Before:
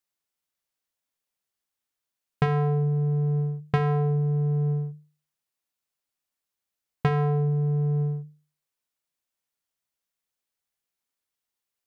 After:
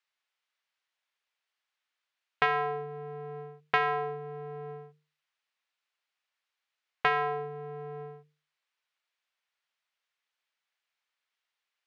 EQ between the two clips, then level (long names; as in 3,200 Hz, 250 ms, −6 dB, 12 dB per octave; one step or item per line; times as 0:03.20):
band-pass filter 480–2,600 Hz
tilt shelving filter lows −8 dB, about 1,100 Hz
+5.0 dB